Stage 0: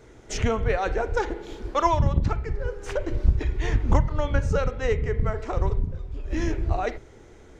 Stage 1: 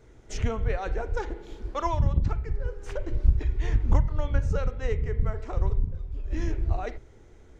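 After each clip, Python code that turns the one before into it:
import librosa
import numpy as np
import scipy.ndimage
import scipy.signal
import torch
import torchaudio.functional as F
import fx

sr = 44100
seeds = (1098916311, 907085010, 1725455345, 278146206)

y = fx.low_shelf(x, sr, hz=120.0, db=8.5)
y = F.gain(torch.from_numpy(y), -7.5).numpy()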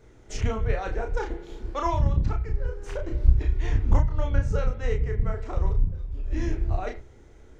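y = fx.doubler(x, sr, ms=32.0, db=-4.0)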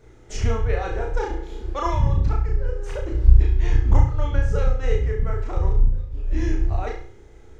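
y = fx.room_flutter(x, sr, wall_m=5.9, rt60_s=0.45)
y = F.gain(torch.from_numpy(y), 1.5).numpy()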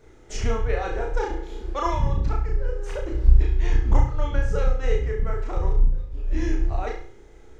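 y = fx.peak_eq(x, sr, hz=91.0, db=-7.0, octaves=1.3)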